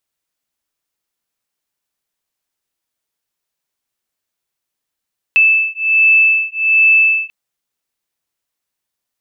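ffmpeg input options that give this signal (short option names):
-f lavfi -i "aevalsrc='0.251*(sin(2*PI*2630*t)+sin(2*PI*2631.3*t))':d=1.94:s=44100"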